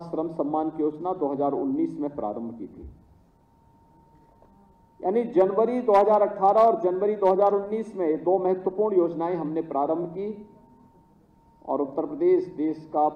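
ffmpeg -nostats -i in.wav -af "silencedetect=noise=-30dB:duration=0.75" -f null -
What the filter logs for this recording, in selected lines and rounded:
silence_start: 2.65
silence_end: 5.03 | silence_duration: 2.38
silence_start: 10.31
silence_end: 11.68 | silence_duration: 1.36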